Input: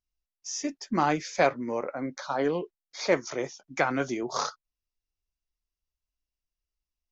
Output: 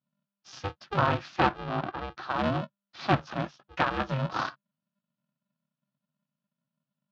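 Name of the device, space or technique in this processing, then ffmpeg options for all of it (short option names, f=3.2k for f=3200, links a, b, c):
ring modulator pedal into a guitar cabinet: -filter_complex "[0:a]aeval=exprs='val(0)*sgn(sin(2*PI*200*n/s))':c=same,highpass=100,equalizer=f=140:t=q:w=4:g=10,equalizer=f=440:t=q:w=4:g=-10,equalizer=f=1.3k:t=q:w=4:g=4,equalizer=f=2.1k:t=q:w=4:g=-8,lowpass=f=3.8k:w=0.5412,lowpass=f=3.8k:w=1.3066,asettb=1/sr,asplit=3[a][b][c];[a]atrim=end=1.594[d];[b]atrim=start=1.59:end=2.21,asetpts=PTS-STARTPTS,afade=t=in:d=0.004:c=qsin,afade=t=out:st=0.616:d=0.004:c=qsin,lowpass=5.4k[e];[c]atrim=start=2.206[f];[d][e]acrossfade=d=0.004:c1=hsin:c2=qsin[g];[g][f]acrossfade=d=0.004:c1=qsin:c2=hsin"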